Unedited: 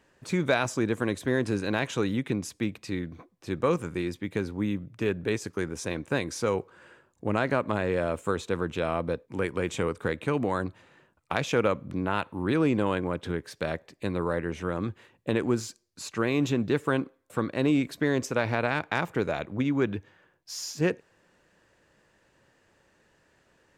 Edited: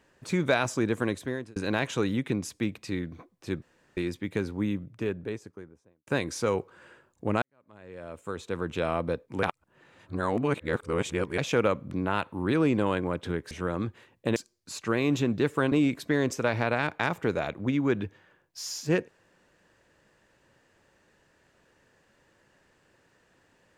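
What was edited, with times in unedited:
1.06–1.56 fade out
3.62–3.97 room tone
4.54–6.07 studio fade out
7.42–8.79 fade in quadratic
9.43–11.38 reverse
13.51–14.53 cut
15.38–15.66 cut
17.02–17.64 cut

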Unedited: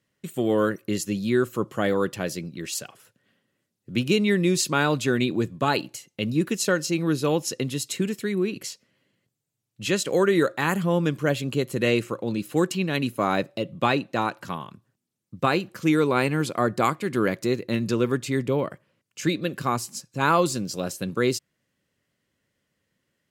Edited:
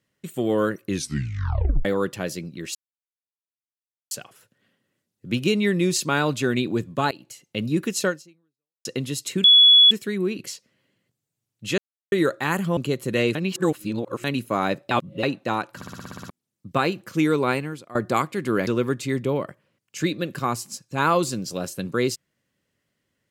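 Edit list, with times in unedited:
0.86 tape stop 0.99 s
2.75 insert silence 1.36 s
5.75–6.11 fade in linear, from -21.5 dB
6.72–7.49 fade out exponential
8.08 add tone 3390 Hz -9 dBFS 0.47 s
9.95–10.29 mute
10.94–11.45 cut
12.03–12.92 reverse
13.59–13.91 reverse
14.44 stutter in place 0.06 s, 9 plays
16.18–16.63 fade out quadratic, to -17.5 dB
17.35–17.9 cut

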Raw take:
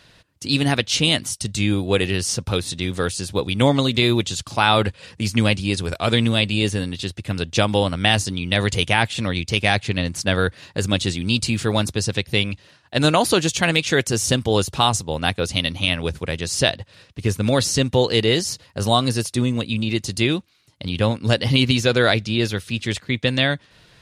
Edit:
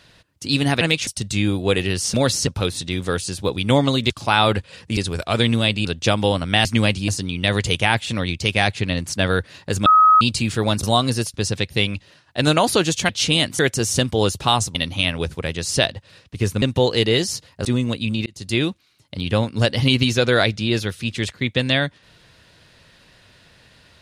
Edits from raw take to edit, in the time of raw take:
0.81–1.31 swap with 13.66–13.92
4.01–4.4 cut
5.27–5.7 move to 8.16
6.58–7.36 cut
10.94–11.29 bleep 1270 Hz -8.5 dBFS
15.08–15.59 cut
17.46–17.79 move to 2.38
18.82–19.33 move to 11.91
19.94–20.28 fade in

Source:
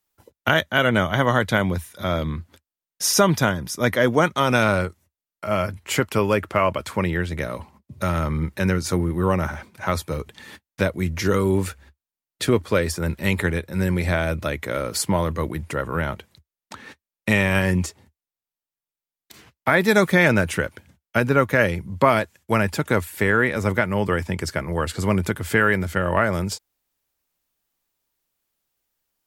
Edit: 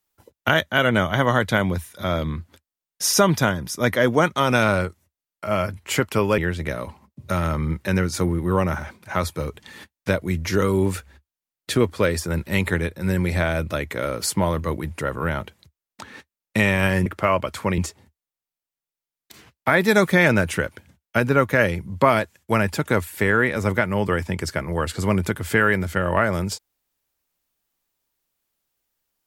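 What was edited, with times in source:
6.38–7.1 move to 17.78

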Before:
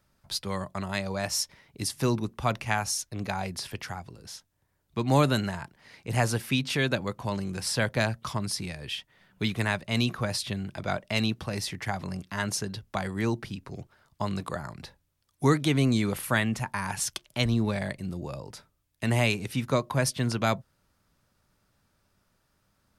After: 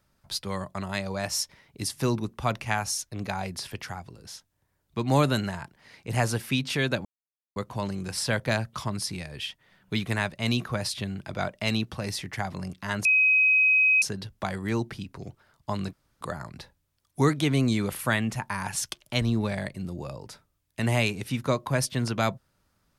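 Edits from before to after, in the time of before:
7.05 insert silence 0.51 s
12.54 add tone 2530 Hz -17 dBFS 0.97 s
14.45 insert room tone 0.28 s

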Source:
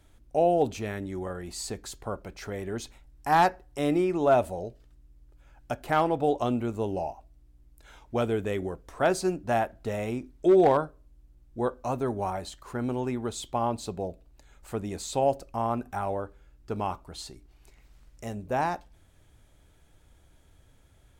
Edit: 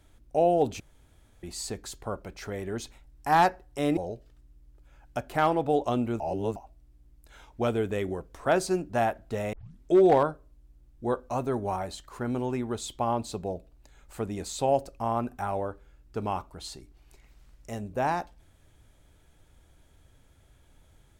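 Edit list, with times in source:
0.8–1.43 room tone
3.97–4.51 cut
6.74–7.1 reverse
10.07 tape start 0.29 s

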